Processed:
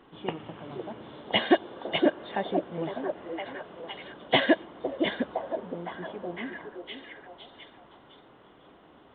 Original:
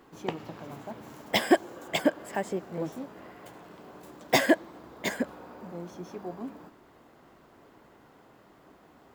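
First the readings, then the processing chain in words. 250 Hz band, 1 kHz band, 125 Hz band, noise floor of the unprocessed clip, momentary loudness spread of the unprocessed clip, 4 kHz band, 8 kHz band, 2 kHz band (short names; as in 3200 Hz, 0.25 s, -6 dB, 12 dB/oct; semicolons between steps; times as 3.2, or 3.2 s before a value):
+1.0 dB, +1.5 dB, 0.0 dB, -58 dBFS, 23 LU, +3.5 dB, under -35 dB, +0.5 dB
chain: nonlinear frequency compression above 2800 Hz 4:1; delay with a stepping band-pass 0.51 s, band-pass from 410 Hz, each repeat 0.7 oct, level -3 dB; µ-law 64 kbps 8000 Hz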